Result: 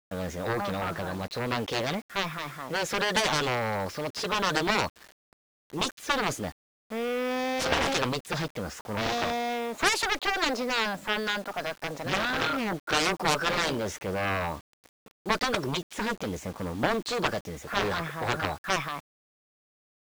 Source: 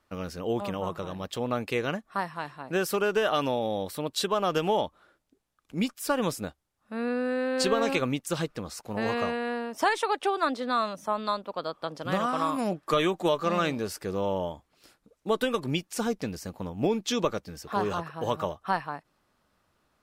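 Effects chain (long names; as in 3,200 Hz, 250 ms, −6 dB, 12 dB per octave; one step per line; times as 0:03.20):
formants moved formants +4 semitones
harmonic generator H 3 −28 dB, 7 −9 dB, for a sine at −10.5 dBFS
low-pass that shuts in the quiet parts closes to 2,800 Hz, open at −18.5 dBFS
transient designer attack −1 dB, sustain +4 dB
bit-depth reduction 8 bits, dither none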